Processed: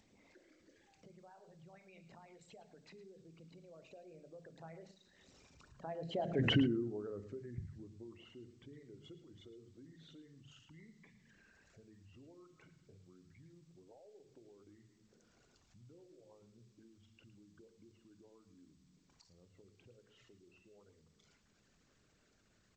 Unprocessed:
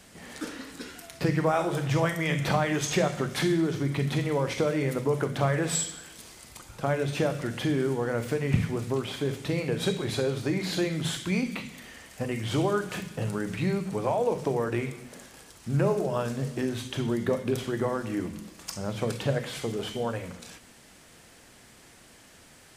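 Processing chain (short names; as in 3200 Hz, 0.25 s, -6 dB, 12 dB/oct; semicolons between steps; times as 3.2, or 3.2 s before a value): formant sharpening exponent 2; Doppler pass-by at 6.47, 50 m/s, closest 2.6 m; upward compressor, threshold -59 dBFS; echo 0.11 s -15 dB; gain +4.5 dB; G.722 64 kbps 16000 Hz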